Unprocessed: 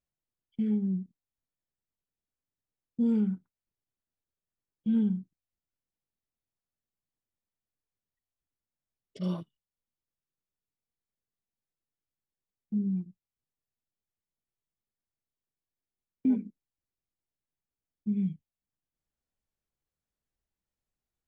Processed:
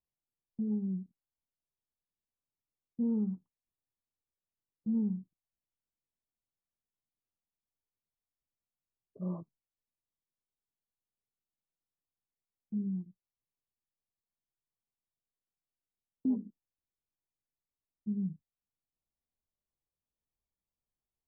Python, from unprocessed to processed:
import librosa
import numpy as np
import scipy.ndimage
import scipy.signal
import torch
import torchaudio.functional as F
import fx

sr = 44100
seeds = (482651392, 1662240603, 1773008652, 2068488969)

y = scipy.signal.sosfilt(scipy.signal.butter(12, 1200.0, 'lowpass', fs=sr, output='sos'), x)
y = y * 10.0 ** (-5.0 / 20.0)